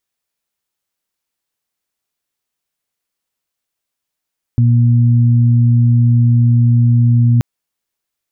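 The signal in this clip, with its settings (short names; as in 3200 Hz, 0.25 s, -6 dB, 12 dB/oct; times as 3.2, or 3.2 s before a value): steady additive tone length 2.83 s, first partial 119 Hz, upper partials -10 dB, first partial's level -7.5 dB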